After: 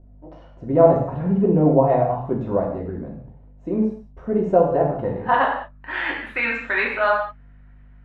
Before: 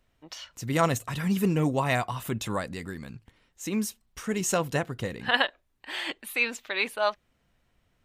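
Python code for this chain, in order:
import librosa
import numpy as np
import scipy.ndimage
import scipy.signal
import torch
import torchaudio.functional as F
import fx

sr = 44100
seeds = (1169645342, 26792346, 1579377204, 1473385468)

y = fx.add_hum(x, sr, base_hz=50, snr_db=22)
y = fx.filter_sweep_lowpass(y, sr, from_hz=630.0, to_hz=1700.0, start_s=4.69, end_s=6.03, q=2.4)
y = fx.rev_gated(y, sr, seeds[0], gate_ms=230, shape='falling', drr_db=-2.0)
y = y * 10.0 ** (2.5 / 20.0)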